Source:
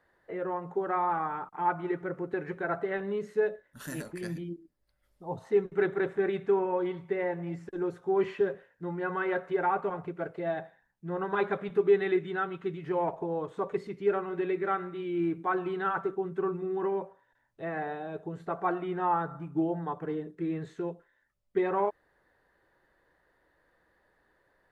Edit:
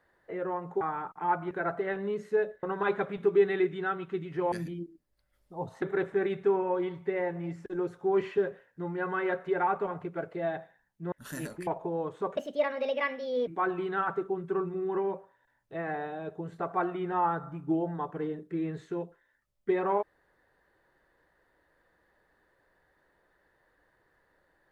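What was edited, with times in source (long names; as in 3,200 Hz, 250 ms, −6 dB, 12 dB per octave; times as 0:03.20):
0:00.81–0:01.18: remove
0:01.88–0:02.55: remove
0:03.67–0:04.22: swap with 0:11.15–0:13.04
0:05.52–0:05.85: remove
0:13.74–0:15.35: play speed 146%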